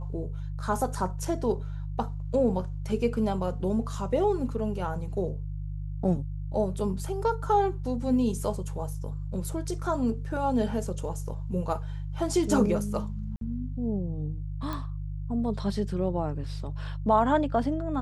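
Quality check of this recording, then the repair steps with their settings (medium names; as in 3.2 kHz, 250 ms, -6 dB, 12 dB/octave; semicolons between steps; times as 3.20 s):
hum 50 Hz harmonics 3 -34 dBFS
13.36–13.41 s: dropout 52 ms
14.73 s: pop -20 dBFS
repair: de-click; de-hum 50 Hz, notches 3; interpolate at 13.36 s, 52 ms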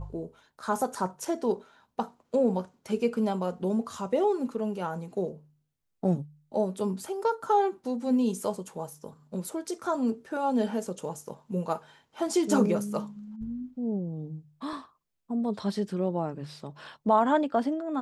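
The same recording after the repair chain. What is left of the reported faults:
nothing left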